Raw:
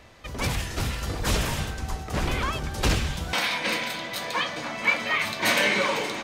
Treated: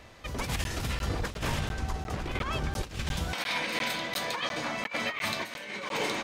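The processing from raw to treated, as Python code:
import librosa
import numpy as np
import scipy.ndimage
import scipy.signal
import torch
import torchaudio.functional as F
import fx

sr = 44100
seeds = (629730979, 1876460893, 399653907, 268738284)

y = fx.high_shelf(x, sr, hz=6400.0, db=-8.0, at=(0.93, 2.73))
y = fx.over_compress(y, sr, threshold_db=-28.0, ratio=-0.5)
y = fx.buffer_crackle(y, sr, first_s=0.64, period_s=0.35, block=512, kind='zero')
y = y * librosa.db_to_amplitude(-3.0)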